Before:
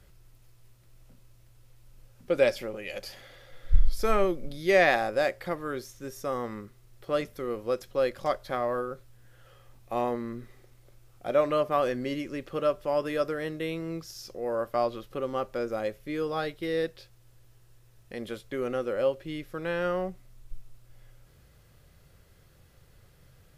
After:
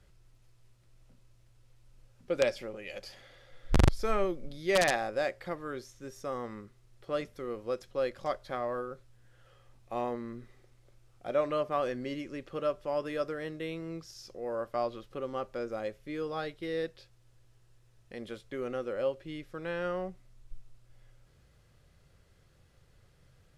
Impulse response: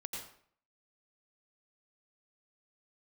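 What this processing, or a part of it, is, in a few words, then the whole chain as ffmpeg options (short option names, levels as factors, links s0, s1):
overflowing digital effects unit: -af "aeval=exprs='(mod(3.55*val(0)+1,2)-1)/3.55':c=same,lowpass=9200,volume=0.562"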